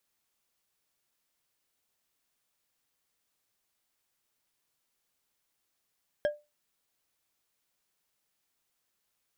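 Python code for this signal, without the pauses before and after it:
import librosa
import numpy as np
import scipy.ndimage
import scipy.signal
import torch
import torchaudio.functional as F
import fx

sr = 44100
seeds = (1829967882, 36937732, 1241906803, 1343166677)

y = fx.strike_glass(sr, length_s=0.89, level_db=-21.0, body='bar', hz=593.0, decay_s=0.24, tilt_db=9.0, modes=5)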